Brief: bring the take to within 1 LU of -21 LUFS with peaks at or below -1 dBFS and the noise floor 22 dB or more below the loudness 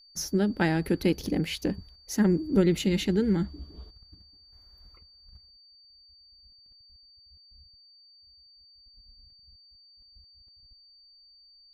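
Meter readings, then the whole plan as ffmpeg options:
steady tone 4.6 kHz; tone level -54 dBFS; loudness -27.0 LUFS; peak level -10.5 dBFS; loudness target -21.0 LUFS
-> -af "bandreject=f=4600:w=30"
-af "volume=2"

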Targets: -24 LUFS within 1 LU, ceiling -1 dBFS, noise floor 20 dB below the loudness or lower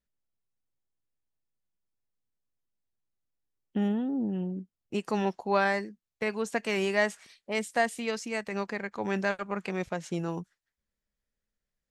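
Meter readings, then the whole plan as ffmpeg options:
loudness -31.0 LUFS; peak level -12.5 dBFS; loudness target -24.0 LUFS
-> -af "volume=2.24"

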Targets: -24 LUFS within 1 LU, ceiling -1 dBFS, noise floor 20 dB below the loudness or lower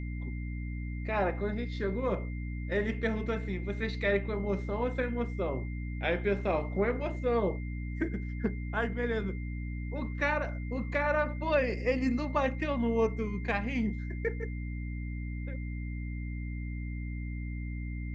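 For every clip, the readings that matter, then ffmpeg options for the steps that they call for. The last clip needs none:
hum 60 Hz; highest harmonic 300 Hz; hum level -34 dBFS; steady tone 2.1 kHz; tone level -49 dBFS; loudness -33.0 LUFS; peak level -15.5 dBFS; loudness target -24.0 LUFS
-> -af "bandreject=f=60:t=h:w=6,bandreject=f=120:t=h:w=6,bandreject=f=180:t=h:w=6,bandreject=f=240:t=h:w=6,bandreject=f=300:t=h:w=6"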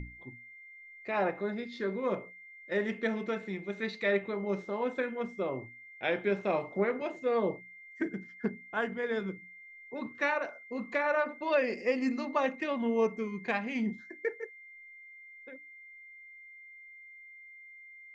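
hum not found; steady tone 2.1 kHz; tone level -49 dBFS
-> -af "bandreject=f=2100:w=30"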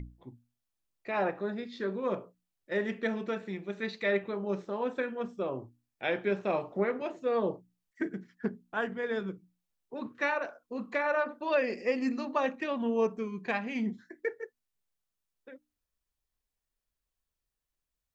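steady tone not found; loudness -33.0 LUFS; peak level -16.5 dBFS; loudness target -24.0 LUFS
-> -af "volume=2.82"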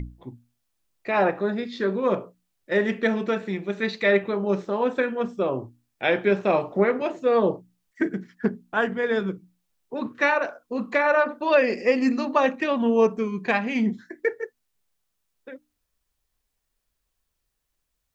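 loudness -24.0 LUFS; peak level -7.5 dBFS; noise floor -78 dBFS

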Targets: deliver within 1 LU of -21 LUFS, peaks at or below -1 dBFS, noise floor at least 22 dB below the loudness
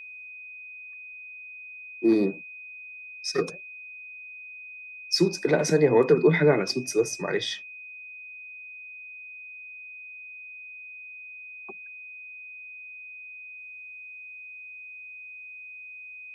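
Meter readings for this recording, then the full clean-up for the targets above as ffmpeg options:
steady tone 2.5 kHz; tone level -40 dBFS; loudness -24.0 LUFS; peak level -7.5 dBFS; loudness target -21.0 LUFS
-> -af "bandreject=f=2500:w=30"
-af "volume=1.41"

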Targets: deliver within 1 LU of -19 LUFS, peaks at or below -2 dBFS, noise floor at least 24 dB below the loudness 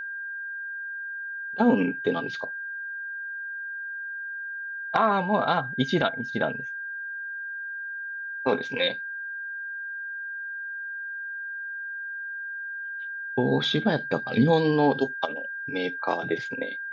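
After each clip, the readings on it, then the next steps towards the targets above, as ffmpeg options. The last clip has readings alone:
steady tone 1.6 kHz; tone level -32 dBFS; loudness -28.0 LUFS; peak level -9.0 dBFS; loudness target -19.0 LUFS
-> -af "bandreject=f=1600:w=30"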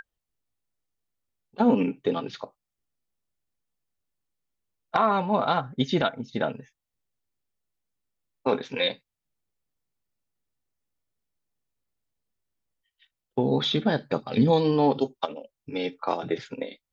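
steady tone not found; loudness -26.0 LUFS; peak level -9.5 dBFS; loudness target -19.0 LUFS
-> -af "volume=2.24"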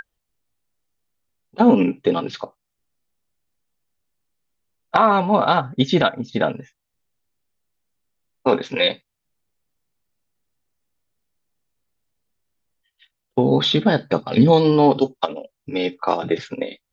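loudness -19.0 LUFS; peak level -2.5 dBFS; noise floor -79 dBFS

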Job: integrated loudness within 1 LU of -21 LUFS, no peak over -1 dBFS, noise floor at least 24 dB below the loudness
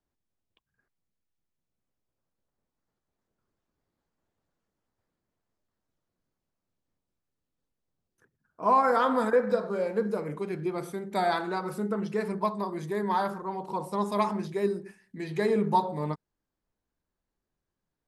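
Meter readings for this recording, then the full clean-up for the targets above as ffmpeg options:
loudness -28.5 LUFS; peak level -12.0 dBFS; loudness target -21.0 LUFS
-> -af "volume=2.37"

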